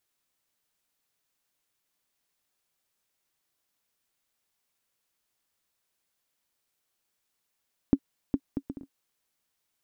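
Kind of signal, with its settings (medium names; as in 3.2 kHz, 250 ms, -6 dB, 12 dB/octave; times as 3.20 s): bouncing ball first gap 0.41 s, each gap 0.56, 275 Hz, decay 59 ms -9 dBFS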